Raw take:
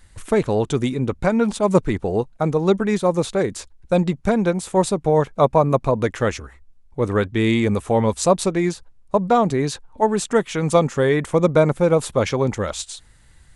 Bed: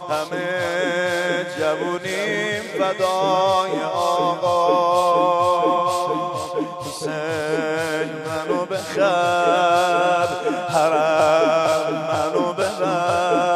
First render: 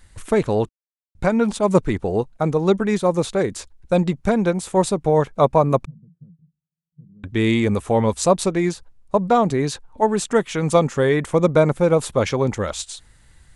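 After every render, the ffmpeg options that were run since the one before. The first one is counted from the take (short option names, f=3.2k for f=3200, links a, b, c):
-filter_complex "[0:a]asettb=1/sr,asplit=3[a][b][c];[a]atrim=end=5.854[d];[b]atrim=start=5.85:end=7.24,asetpts=PTS-STARTPTS,afade=t=in:d=0.004:c=qsin,afade=t=out:st=1.386:d=0.004:c=qsin,asuperpass=centerf=160:order=4:qfactor=6.9[e];[c]atrim=start=7.236[f];[d][e]acrossfade=d=0.004:c1=hsin:c2=qsin[g];[g][f]acrossfade=d=0.004:c1=qsin:c2=hsin,asplit=3[h][i][j];[h]atrim=end=0.69,asetpts=PTS-STARTPTS,afade=t=out:st=0.686:d=0.004:c=hsin[k];[i]atrim=start=0.69:end=1.15,asetpts=PTS-STARTPTS,volume=0[l];[j]atrim=start=1.15,asetpts=PTS-STARTPTS,afade=t=in:d=0.004:c=hsin[m];[k][l][m]concat=n=3:v=0:a=1"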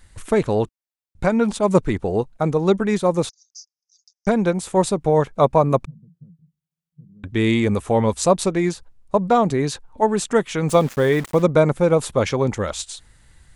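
-filter_complex "[0:a]asettb=1/sr,asplit=3[a][b][c];[a]atrim=end=3.294[d];[b]atrim=start=3.29:end=4.27,asetpts=PTS-STARTPTS,afade=t=in:d=0.004:c=qsin,afade=t=out:st=0.976:d=0.004:c=qsin,asuperpass=centerf=5600:order=8:qfactor=3.4[e];[c]atrim=start=4.266[f];[d][e]acrossfade=d=0.004:c1=hsin:c2=qsin[g];[g][f]acrossfade=d=0.004:c1=qsin:c2=hsin,asettb=1/sr,asplit=3[h][i][j];[h]atrim=end=10.694[k];[i]atrim=start=10.69:end=11.43,asetpts=PTS-STARTPTS,afade=t=in:d=0.004:c=qsin,afade=t=out:st=0.736:d=0.004:c=qsin,aeval=exprs='val(0)*gte(abs(val(0)),0.0251)':c=same[l];[j]atrim=start=11.426[m];[k][l]acrossfade=d=0.004:c1=hsin:c2=qsin[n];[n][m]acrossfade=d=0.004:c1=qsin:c2=hsin"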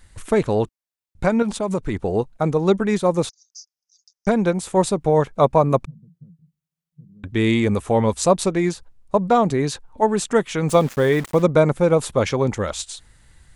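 -filter_complex "[0:a]asettb=1/sr,asplit=3[a][b][c];[a]atrim=end=1.424[d];[b]atrim=start=1.42:end=1.97,asetpts=PTS-STARTPTS,afade=t=in:d=0.004:c=qsin,afade=t=out:st=0.546:d=0.004:c=qsin,acompressor=threshold=-19dB:ratio=4:attack=3.2:release=140:knee=1:detection=peak[e];[c]atrim=start=1.966[f];[d][e]acrossfade=d=0.004:c1=hsin:c2=qsin[g];[g][f]acrossfade=d=0.004:c1=qsin:c2=hsin"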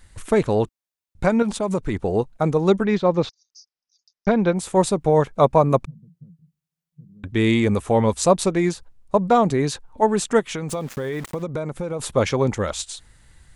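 -filter_complex "[0:a]asettb=1/sr,asplit=3[a][b][c];[a]atrim=end=2.854[d];[b]atrim=start=2.85:end=4.57,asetpts=PTS-STARTPTS,afade=t=in:d=0.004:c=qsin,afade=t=out:st=1.716:d=0.004:c=qsin,lowpass=f=4.8k:w=0.5412,lowpass=f=4.8k:w=1.3066[e];[c]atrim=start=4.566[f];[d][e]acrossfade=d=0.004:c1=hsin:c2=qsin[g];[g][f]acrossfade=d=0.004:c1=qsin:c2=hsin,asplit=3[h][i][j];[h]afade=t=out:st=10.39:d=0.02[k];[i]acompressor=threshold=-23dB:ratio=8:attack=3.2:release=140:knee=1:detection=peak,afade=t=in:st=10.39:d=0.02,afade=t=out:st=11.99:d=0.02[l];[j]afade=t=in:st=11.99:d=0.02[m];[k][l][m]amix=inputs=3:normalize=0"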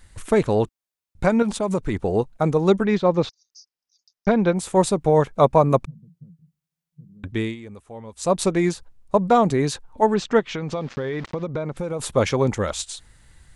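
-filter_complex "[0:a]asettb=1/sr,asplit=3[a][b][c];[a]atrim=end=10.144[d];[b]atrim=start=10.14:end=11.77,asetpts=PTS-STARTPTS,afade=t=in:d=0.004:c=qsin,afade=t=out:st=1.626:d=0.004:c=qsin,lowpass=f=5.3k:w=0.5412,lowpass=f=5.3k:w=1.3066[e];[c]atrim=start=11.766[f];[d][e]acrossfade=d=0.004:c1=hsin:c2=qsin[g];[g][f]acrossfade=d=0.004:c1=qsin:c2=hsin,asplit=3[h][i][j];[h]atrim=end=7.56,asetpts=PTS-STARTPTS,afade=t=out:st=7.26:d=0.3:silence=0.1[k];[i]atrim=start=7.56:end=8.13,asetpts=PTS-STARTPTS,volume=-20dB[l];[j]atrim=start=8.13,asetpts=PTS-STARTPTS,afade=t=in:d=0.3:silence=0.1[m];[k][l][m]concat=n=3:v=0:a=1"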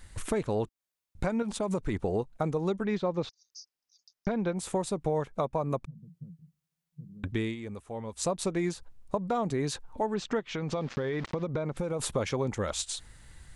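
-af "alimiter=limit=-11dB:level=0:latency=1:release=429,acompressor=threshold=-30dB:ratio=2.5"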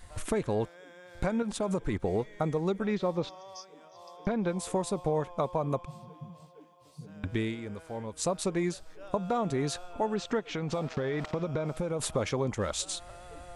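-filter_complex "[1:a]volume=-30.5dB[a];[0:a][a]amix=inputs=2:normalize=0"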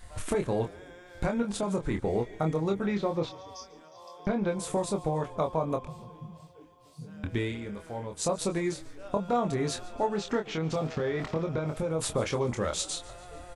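-filter_complex "[0:a]asplit=2[a][b];[b]adelay=25,volume=-5dB[c];[a][c]amix=inputs=2:normalize=0,asplit=5[d][e][f][g][h];[e]adelay=144,afreqshift=-32,volume=-21dB[i];[f]adelay=288,afreqshift=-64,volume=-26.2dB[j];[g]adelay=432,afreqshift=-96,volume=-31.4dB[k];[h]adelay=576,afreqshift=-128,volume=-36.6dB[l];[d][i][j][k][l]amix=inputs=5:normalize=0"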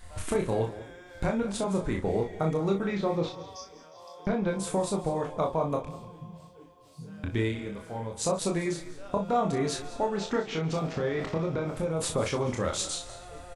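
-filter_complex "[0:a]asplit=2[a][b];[b]adelay=36,volume=-6dB[c];[a][c]amix=inputs=2:normalize=0,aecho=1:1:199:0.158"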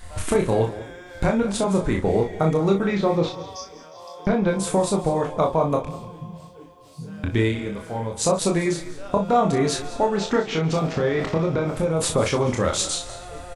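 -af "volume=7.5dB"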